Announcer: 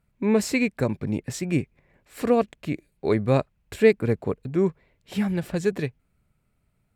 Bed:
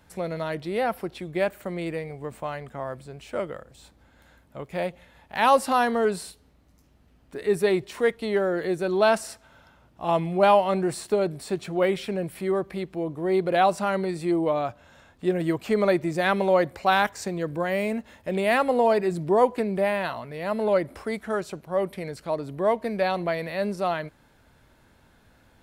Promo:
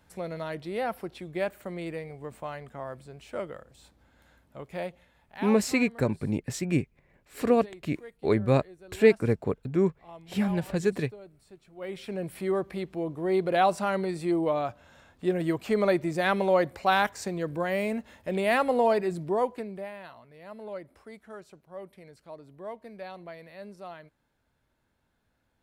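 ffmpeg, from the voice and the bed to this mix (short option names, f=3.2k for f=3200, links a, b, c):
-filter_complex "[0:a]adelay=5200,volume=-2dB[a];[1:a]volume=16dB,afade=t=out:st=4.71:d=0.89:silence=0.11885,afade=t=in:st=11.76:d=0.57:silence=0.0891251,afade=t=out:st=18.87:d=1.04:silence=0.199526[b];[a][b]amix=inputs=2:normalize=0"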